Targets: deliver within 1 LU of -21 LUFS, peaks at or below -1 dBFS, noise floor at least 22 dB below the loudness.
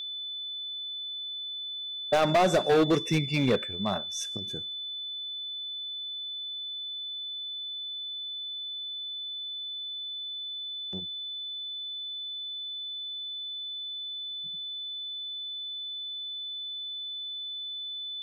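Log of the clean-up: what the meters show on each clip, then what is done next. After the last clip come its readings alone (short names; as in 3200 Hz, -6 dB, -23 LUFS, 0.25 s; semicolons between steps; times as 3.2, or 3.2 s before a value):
clipped 0.6%; flat tops at -18.0 dBFS; steady tone 3500 Hz; tone level -34 dBFS; loudness -31.5 LUFS; peak -18.0 dBFS; loudness target -21.0 LUFS
-> clip repair -18 dBFS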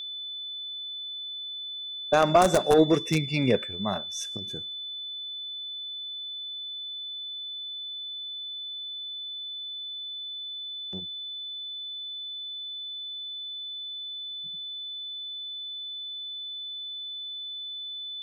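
clipped 0.0%; steady tone 3500 Hz; tone level -34 dBFS
-> notch 3500 Hz, Q 30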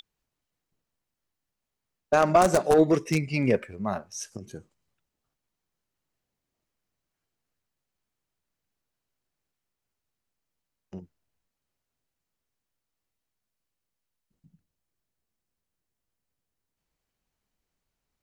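steady tone none; loudness -23.5 LUFS; peak -8.5 dBFS; loudness target -21.0 LUFS
-> gain +2.5 dB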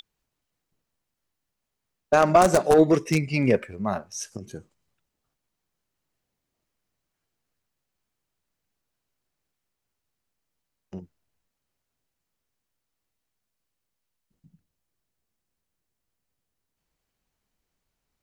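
loudness -21.0 LUFS; peak -6.0 dBFS; noise floor -83 dBFS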